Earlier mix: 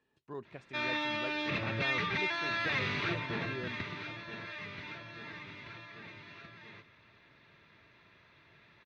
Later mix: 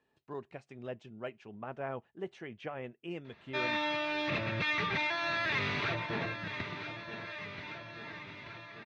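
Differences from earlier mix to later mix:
background: entry +2.80 s; master: add peaking EQ 700 Hz +5 dB 0.84 oct

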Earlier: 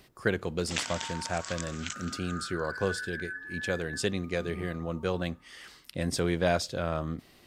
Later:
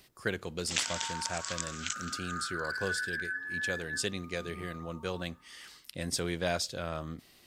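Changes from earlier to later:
speech -6.5 dB; first sound -4.5 dB; master: add treble shelf 2.3 kHz +9 dB

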